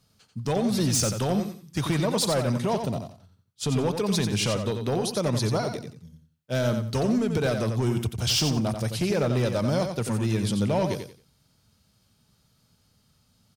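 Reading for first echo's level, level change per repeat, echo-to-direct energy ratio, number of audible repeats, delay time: -7.0 dB, -12.0 dB, -6.5 dB, 3, 89 ms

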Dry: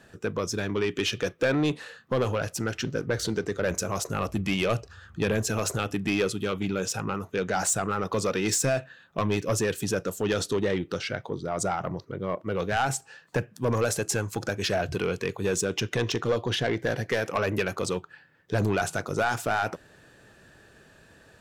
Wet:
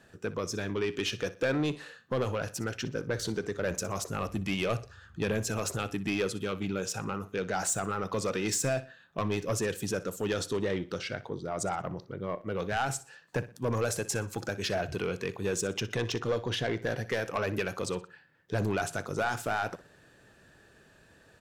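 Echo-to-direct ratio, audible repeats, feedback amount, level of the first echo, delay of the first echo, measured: -16.5 dB, 2, 34%, -17.0 dB, 61 ms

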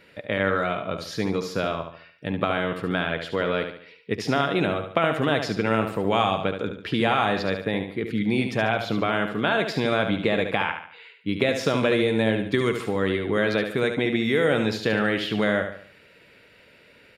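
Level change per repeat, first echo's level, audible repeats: -7.5 dB, -7.5 dB, 4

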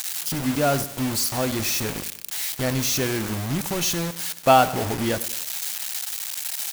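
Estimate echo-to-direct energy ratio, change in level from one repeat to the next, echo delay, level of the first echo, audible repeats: -15.0 dB, -7.5 dB, 0.1 s, -16.0 dB, 3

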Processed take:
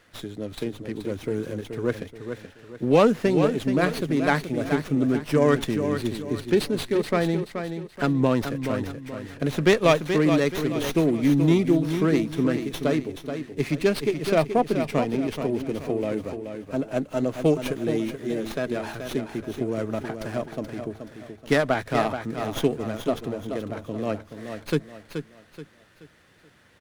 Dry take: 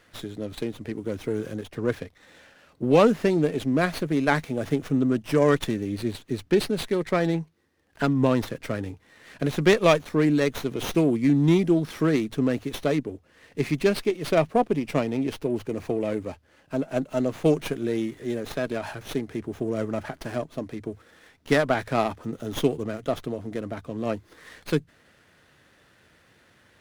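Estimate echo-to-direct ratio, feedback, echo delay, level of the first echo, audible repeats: -7.5 dB, 37%, 0.428 s, -8.0 dB, 4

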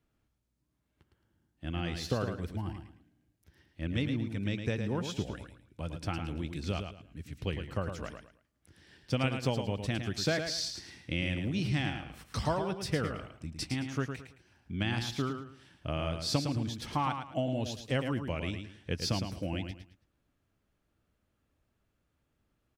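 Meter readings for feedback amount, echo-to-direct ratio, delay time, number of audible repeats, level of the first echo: 28%, -6.5 dB, 0.109 s, 3, -7.0 dB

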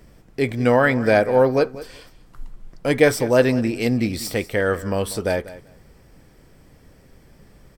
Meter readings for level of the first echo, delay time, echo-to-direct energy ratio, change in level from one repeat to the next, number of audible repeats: -17.0 dB, 0.192 s, -17.0 dB, -16.0 dB, 2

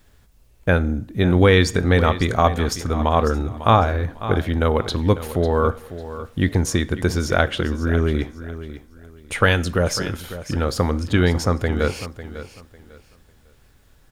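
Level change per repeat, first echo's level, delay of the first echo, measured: -12.0 dB, -13.5 dB, 0.549 s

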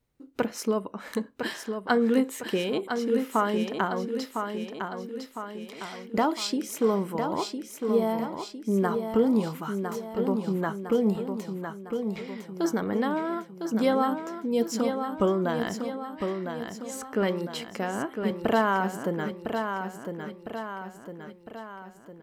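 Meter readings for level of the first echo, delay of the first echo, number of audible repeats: -6.5 dB, 1.006 s, 5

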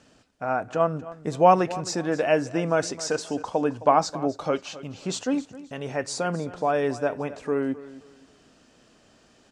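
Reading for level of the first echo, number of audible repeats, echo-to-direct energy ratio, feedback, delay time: -17.0 dB, 2, -16.5 dB, 28%, 0.264 s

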